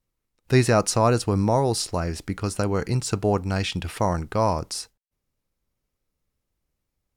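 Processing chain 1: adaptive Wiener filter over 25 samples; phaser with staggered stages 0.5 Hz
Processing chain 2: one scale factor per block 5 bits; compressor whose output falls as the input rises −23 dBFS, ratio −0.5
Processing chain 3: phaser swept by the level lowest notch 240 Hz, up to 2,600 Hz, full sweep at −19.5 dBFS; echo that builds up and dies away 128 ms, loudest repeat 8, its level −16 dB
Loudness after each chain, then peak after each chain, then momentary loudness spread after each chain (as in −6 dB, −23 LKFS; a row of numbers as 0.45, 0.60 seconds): −27.5, −26.0, −24.5 LKFS; −8.0, −9.5, −7.0 dBFS; 12, 6, 13 LU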